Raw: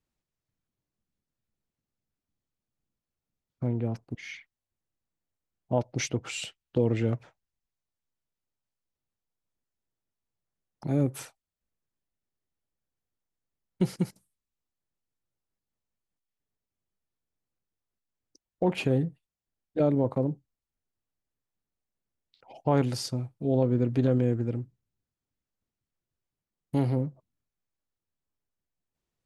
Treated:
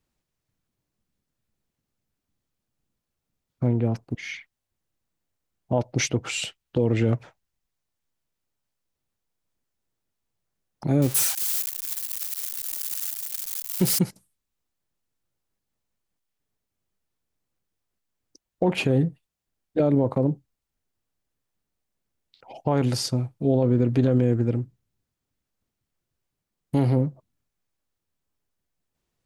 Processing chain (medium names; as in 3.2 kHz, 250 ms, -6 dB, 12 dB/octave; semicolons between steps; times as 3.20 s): 11.02–13.99 s: zero-crossing glitches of -23 dBFS; peak limiter -17.5 dBFS, peak gain reduction 6.5 dB; trim +6.5 dB